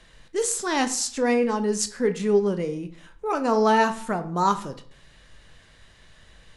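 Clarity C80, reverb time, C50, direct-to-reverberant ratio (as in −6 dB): 18.0 dB, 0.55 s, 14.5 dB, 8.5 dB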